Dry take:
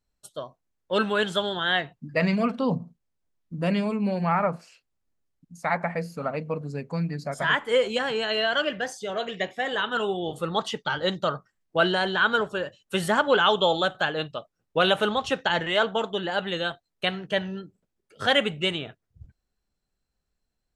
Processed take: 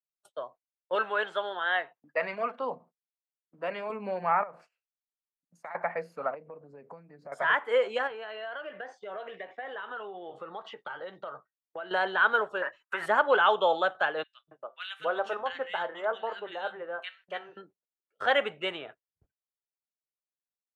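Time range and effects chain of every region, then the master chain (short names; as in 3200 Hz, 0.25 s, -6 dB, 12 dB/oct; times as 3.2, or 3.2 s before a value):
0.95–3.9 HPF 470 Hz 6 dB/oct + high shelf 7700 Hz -10.5 dB
4.43–5.75 compressor 16:1, threshold -35 dBFS + flutter echo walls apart 11.3 m, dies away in 0.24 s
6.34–7.32 tilt shelf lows +6 dB, about 1300 Hz + compressor 16:1, threshold -35 dBFS
8.07–11.91 air absorption 130 m + doubler 15 ms -13.5 dB + compressor 12:1, threshold -32 dBFS
12.62–13.06 band shelf 1400 Hz +14 dB + comb 3.1 ms, depth 34% + compressor, threshold -24 dBFS
14.23–17.57 resonator 130 Hz, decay 0.28 s, mix 50% + three bands offset in time highs, lows, mids 0.24/0.28 s, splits 210/1800 Hz
whole clip: low shelf 97 Hz -8.5 dB; gate -48 dBFS, range -21 dB; three-band isolator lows -18 dB, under 410 Hz, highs -17 dB, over 2300 Hz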